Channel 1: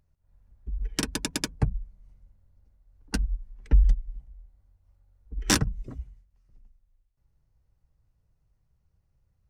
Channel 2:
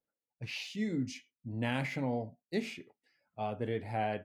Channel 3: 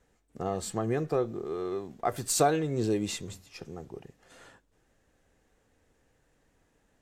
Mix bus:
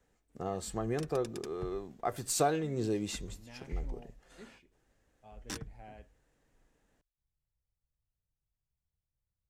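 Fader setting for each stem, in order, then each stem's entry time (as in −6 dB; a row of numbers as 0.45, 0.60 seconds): −19.0, −19.0, −4.5 decibels; 0.00, 1.85, 0.00 seconds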